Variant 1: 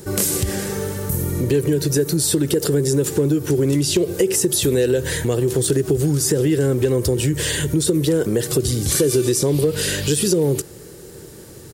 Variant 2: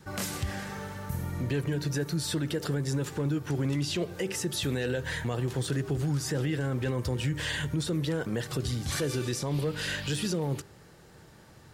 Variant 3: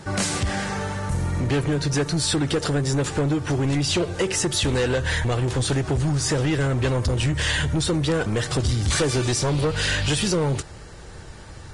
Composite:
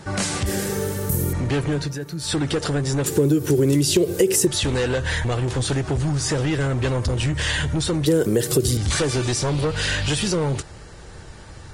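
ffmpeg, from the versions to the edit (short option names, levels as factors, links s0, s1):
-filter_complex "[0:a]asplit=3[s0][s1][s2];[2:a]asplit=5[s3][s4][s5][s6][s7];[s3]atrim=end=0.462[s8];[s0]atrim=start=0.458:end=1.332[s9];[s4]atrim=start=1.328:end=1.95[s10];[1:a]atrim=start=1.79:end=2.35[s11];[s5]atrim=start=2.19:end=3.062[s12];[s1]atrim=start=3.058:end=4.472[s13];[s6]atrim=start=4.468:end=8.062[s14];[s2]atrim=start=8.058:end=8.772[s15];[s7]atrim=start=8.768[s16];[s8][s9]acrossfade=d=0.004:c1=hsin:c2=hsin[s17];[s17][s10]acrossfade=d=0.004:c1=hsin:c2=hsin[s18];[s18][s11]acrossfade=d=0.16:c1=tri:c2=tri[s19];[s19][s12]acrossfade=d=0.16:c1=tri:c2=tri[s20];[s20][s13]acrossfade=d=0.004:c1=hsin:c2=hsin[s21];[s21][s14]acrossfade=d=0.004:c1=hsin:c2=hsin[s22];[s22][s15]acrossfade=d=0.004:c1=hsin:c2=hsin[s23];[s23][s16]acrossfade=d=0.004:c1=hsin:c2=hsin"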